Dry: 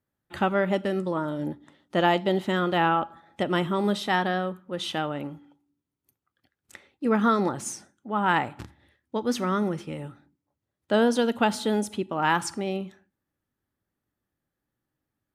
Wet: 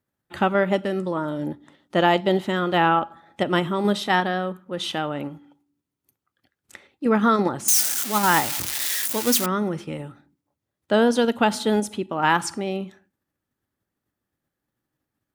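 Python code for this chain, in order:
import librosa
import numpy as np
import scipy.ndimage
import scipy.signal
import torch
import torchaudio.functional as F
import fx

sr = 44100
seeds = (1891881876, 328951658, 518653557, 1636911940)

p1 = fx.crossing_spikes(x, sr, level_db=-15.5, at=(7.68, 9.46))
p2 = fx.low_shelf(p1, sr, hz=71.0, db=-5.5)
p3 = fx.level_steps(p2, sr, step_db=12)
y = p2 + F.gain(torch.from_numpy(p3), -2.5).numpy()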